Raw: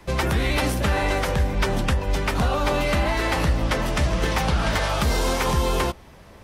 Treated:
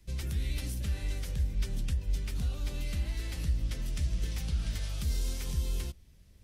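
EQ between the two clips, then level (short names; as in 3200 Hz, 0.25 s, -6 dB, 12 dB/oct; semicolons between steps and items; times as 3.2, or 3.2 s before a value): passive tone stack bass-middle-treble 10-0-1; high shelf 2600 Hz +10.5 dB; 0.0 dB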